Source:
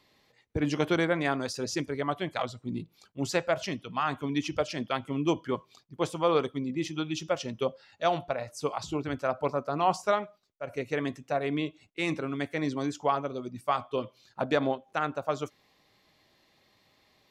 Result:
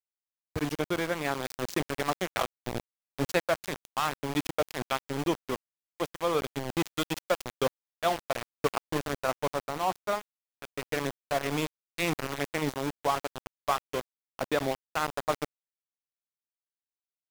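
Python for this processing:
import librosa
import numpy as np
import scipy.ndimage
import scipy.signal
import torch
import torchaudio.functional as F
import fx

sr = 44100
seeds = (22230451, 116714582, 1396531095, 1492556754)

y = np.where(np.abs(x) >= 10.0 ** (-28.0 / 20.0), x, 0.0)
y = fx.rider(y, sr, range_db=4, speed_s=0.5)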